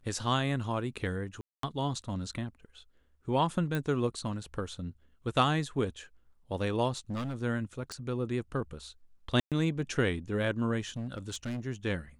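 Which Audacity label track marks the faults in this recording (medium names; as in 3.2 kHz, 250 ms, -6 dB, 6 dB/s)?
1.410000	1.630000	dropout 223 ms
3.750000	3.750000	pop
6.910000	7.360000	clipped -31.5 dBFS
7.920000	7.920000	pop -24 dBFS
9.400000	9.520000	dropout 117 ms
10.890000	11.600000	clipped -32 dBFS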